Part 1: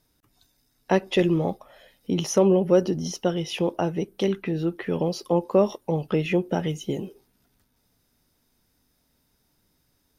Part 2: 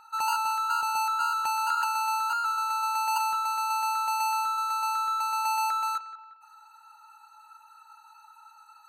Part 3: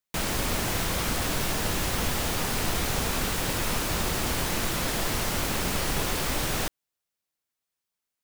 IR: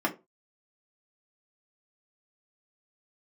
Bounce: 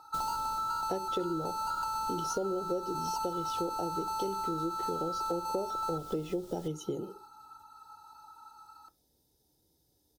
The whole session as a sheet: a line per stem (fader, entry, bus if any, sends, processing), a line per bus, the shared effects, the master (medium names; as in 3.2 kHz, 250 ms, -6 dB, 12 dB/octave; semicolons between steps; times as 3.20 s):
-3.5 dB, 0.00 s, send -21 dB, high-pass 47 Hz; comb 2.3 ms, depth 36%
+1.5 dB, 0.00 s, send -15 dB, graphic EQ with 31 bands 1.25 kHz +12 dB, 3.15 kHz -8 dB, 5 kHz +6 dB; treble shelf 3.8 kHz -7.5 dB
-9.5 dB, 0.00 s, no send, auto duck -9 dB, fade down 0.70 s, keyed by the first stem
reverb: on, RT60 0.25 s, pre-delay 3 ms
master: high-order bell 1.7 kHz -15 dB; compression 6:1, threshold -31 dBFS, peak gain reduction 16 dB